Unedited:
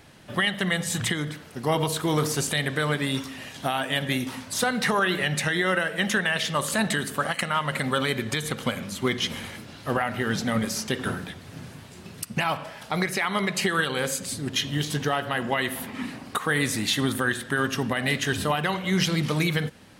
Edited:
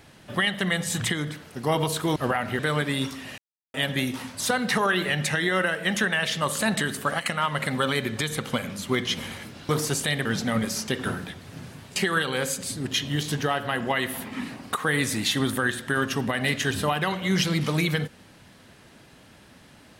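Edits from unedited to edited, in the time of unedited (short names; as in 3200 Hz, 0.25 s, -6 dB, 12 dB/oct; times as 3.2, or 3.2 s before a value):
2.16–2.72 swap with 9.82–10.25
3.51–3.87 mute
11.96–13.58 cut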